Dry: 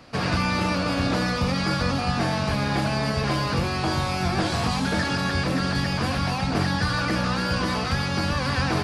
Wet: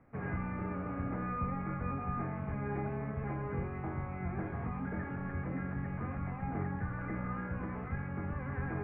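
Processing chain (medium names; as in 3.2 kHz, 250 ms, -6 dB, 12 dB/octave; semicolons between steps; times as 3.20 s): Chebyshev low-pass 2.2 kHz, order 5; bass shelf 460 Hz +8.5 dB; feedback comb 410 Hz, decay 0.81 s, mix 90%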